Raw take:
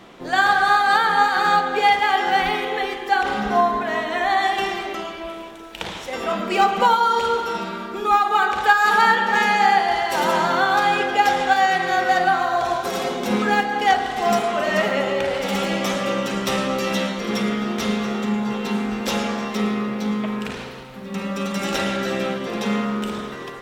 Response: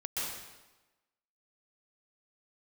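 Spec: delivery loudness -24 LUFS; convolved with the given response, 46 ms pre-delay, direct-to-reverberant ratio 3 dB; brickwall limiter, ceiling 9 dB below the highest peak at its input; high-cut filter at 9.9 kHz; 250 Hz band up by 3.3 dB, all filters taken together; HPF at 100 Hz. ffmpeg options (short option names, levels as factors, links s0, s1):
-filter_complex "[0:a]highpass=100,lowpass=9900,equalizer=f=250:t=o:g=4.5,alimiter=limit=0.251:level=0:latency=1,asplit=2[s0][s1];[1:a]atrim=start_sample=2205,adelay=46[s2];[s1][s2]afir=irnorm=-1:irlink=0,volume=0.447[s3];[s0][s3]amix=inputs=2:normalize=0,volume=0.631"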